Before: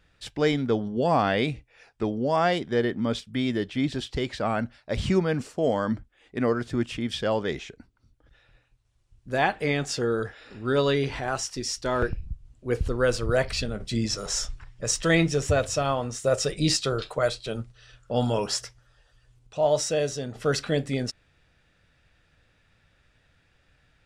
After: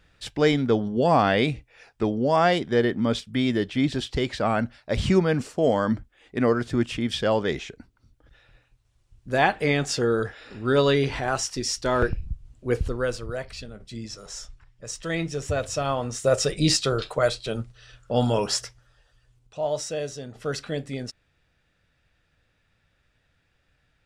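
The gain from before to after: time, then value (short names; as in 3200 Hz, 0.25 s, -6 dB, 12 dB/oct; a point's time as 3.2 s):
12.68 s +3 dB
13.41 s -9.5 dB
14.87 s -9.5 dB
16.2 s +2.5 dB
18.56 s +2.5 dB
19.66 s -4.5 dB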